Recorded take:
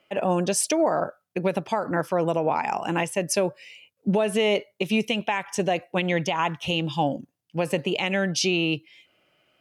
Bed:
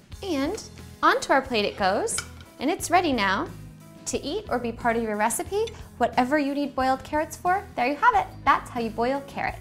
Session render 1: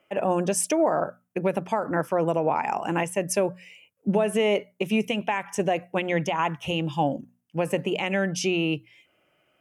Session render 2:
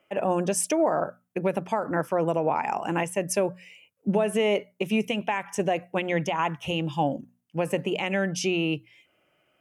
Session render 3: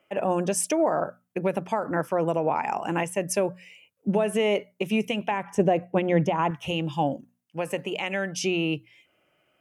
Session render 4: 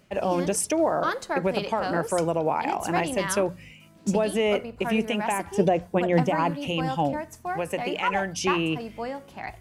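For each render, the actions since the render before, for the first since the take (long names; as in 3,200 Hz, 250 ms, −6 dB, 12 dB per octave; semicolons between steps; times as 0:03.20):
parametric band 4,200 Hz −12.5 dB 0.7 octaves; mains-hum notches 60/120/180/240 Hz
level −1 dB
0:05.31–0:06.51: tilt shelving filter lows +6.5 dB, about 1,100 Hz; 0:07.14–0:08.43: low-shelf EQ 400 Hz −7 dB
mix in bed −8 dB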